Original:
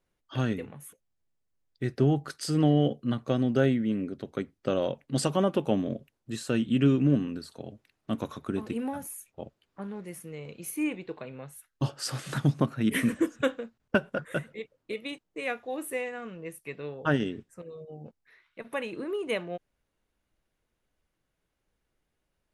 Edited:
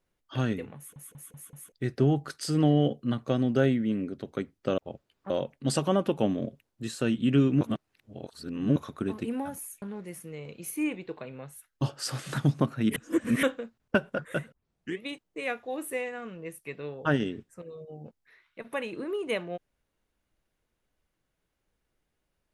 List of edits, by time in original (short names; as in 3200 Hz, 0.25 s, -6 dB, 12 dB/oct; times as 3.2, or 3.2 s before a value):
0.77 stutter in place 0.19 s, 5 plays
7.09–8.24 reverse
9.3–9.82 move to 4.78
12.96–13.43 reverse
14.52 tape start 0.50 s